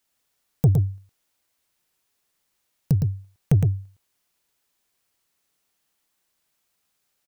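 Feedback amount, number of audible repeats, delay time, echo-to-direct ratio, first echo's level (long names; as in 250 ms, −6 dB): repeats not evenly spaced, 1, 112 ms, −4.5 dB, −4.5 dB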